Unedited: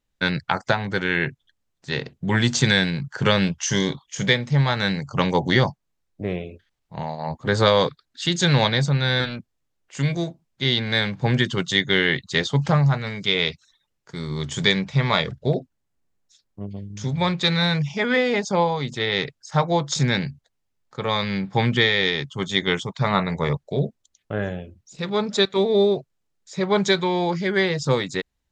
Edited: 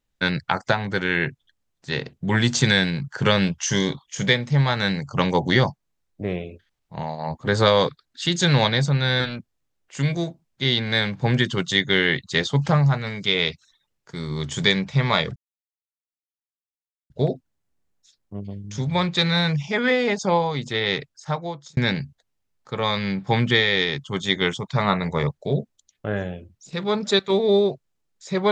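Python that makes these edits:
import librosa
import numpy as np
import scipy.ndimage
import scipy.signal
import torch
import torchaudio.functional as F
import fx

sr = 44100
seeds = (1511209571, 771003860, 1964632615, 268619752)

y = fx.edit(x, sr, fx.insert_silence(at_s=15.36, length_s=1.74),
    fx.fade_out_span(start_s=19.17, length_s=0.86), tone=tone)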